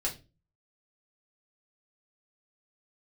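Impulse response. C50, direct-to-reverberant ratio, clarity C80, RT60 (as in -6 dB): 13.0 dB, -3.5 dB, 20.0 dB, 0.30 s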